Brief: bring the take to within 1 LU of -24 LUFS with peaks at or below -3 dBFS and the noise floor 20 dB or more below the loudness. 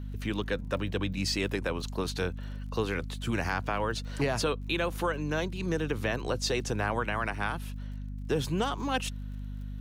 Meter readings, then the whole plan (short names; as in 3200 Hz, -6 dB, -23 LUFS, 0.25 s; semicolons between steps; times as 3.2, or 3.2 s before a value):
ticks 41/s; hum 50 Hz; harmonics up to 250 Hz; hum level -35 dBFS; loudness -32.0 LUFS; peak -17.0 dBFS; loudness target -24.0 LUFS
-> de-click; notches 50/100/150/200/250 Hz; gain +8 dB